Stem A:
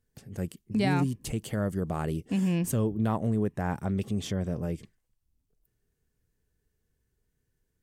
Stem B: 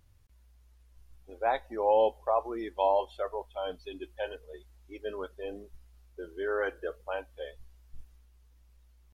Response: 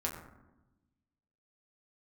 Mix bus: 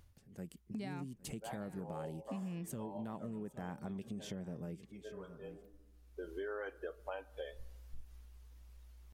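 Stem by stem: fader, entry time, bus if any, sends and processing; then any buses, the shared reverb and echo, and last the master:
−17.0 dB, 0.00 s, no send, echo send −19 dB, low shelf with overshoot 120 Hz −7.5 dB, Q 1.5; automatic gain control gain up to 12 dB
+2.5 dB, 0.00 s, send −22.5 dB, no echo send, automatic ducking −23 dB, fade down 0.25 s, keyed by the first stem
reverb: on, RT60 1.0 s, pre-delay 6 ms
echo: single-tap delay 809 ms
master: downward compressor 5 to 1, threshold −41 dBFS, peak gain reduction 16 dB

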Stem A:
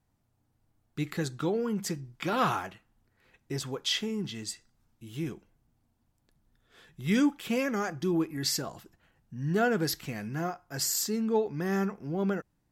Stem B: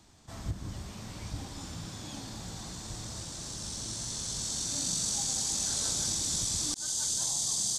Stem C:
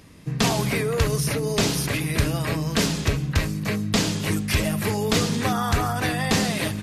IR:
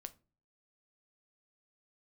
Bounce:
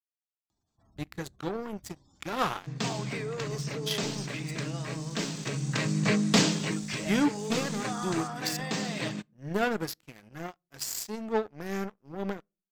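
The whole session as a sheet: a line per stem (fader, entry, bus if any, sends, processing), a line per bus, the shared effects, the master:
−0.5 dB, 0.00 s, send −11.5 dB, power curve on the samples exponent 2
−19.5 dB, 0.50 s, no send, gate on every frequency bin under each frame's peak −20 dB strong; upward compression, threshold −59 dBFS
−4.0 dB, 2.40 s, send −9.5 dB, brick-wall band-pass 110–8,500 Hz; automatic ducking −18 dB, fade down 0.60 s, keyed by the first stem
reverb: on, RT60 0.35 s, pre-delay 7 ms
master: leveller curve on the samples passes 1

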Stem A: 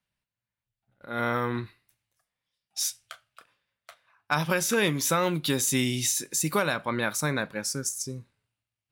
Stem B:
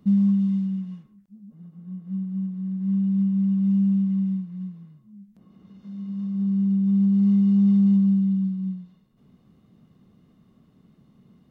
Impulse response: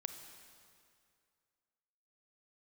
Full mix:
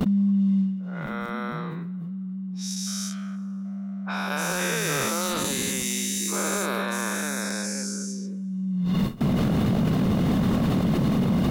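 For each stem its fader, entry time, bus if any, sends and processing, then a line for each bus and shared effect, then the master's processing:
−11.0 dB, 0.00 s, send −12 dB, every bin's largest magnitude spread in time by 480 ms; high-pass filter 280 Hz 24 dB per octave; low-pass that shuts in the quiet parts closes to 770 Hz, open at −17 dBFS
+1.5 dB, 0.00 s, no send, noise gate with hold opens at −52 dBFS; brickwall limiter −19 dBFS, peak gain reduction 6 dB; envelope flattener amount 100%; automatic ducking −12 dB, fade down 0.20 s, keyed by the first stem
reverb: on, RT60 2.3 s, pre-delay 27 ms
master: wave folding −16.5 dBFS

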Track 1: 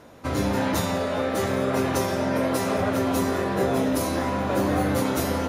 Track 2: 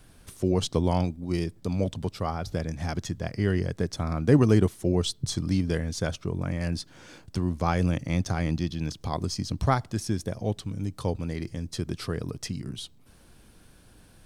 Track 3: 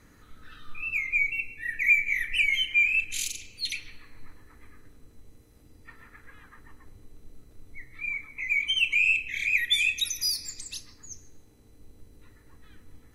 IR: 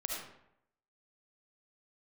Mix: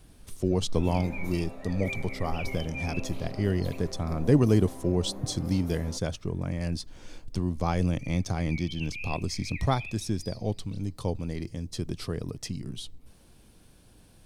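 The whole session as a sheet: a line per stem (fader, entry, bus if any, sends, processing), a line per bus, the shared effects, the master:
−13.0 dB, 0.50 s, send −10 dB, parametric band 3,700 Hz −9.5 dB 2.3 octaves; automatic ducking −11 dB, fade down 1.70 s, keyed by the second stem
−1.5 dB, 0.00 s, no send, no processing
−11.5 dB, 0.00 s, no send, elliptic low-pass filter 4,900 Hz; spectral tilt −3 dB per octave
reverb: on, RT60 0.75 s, pre-delay 30 ms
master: parametric band 1,500 Hz −5.5 dB 0.78 octaves

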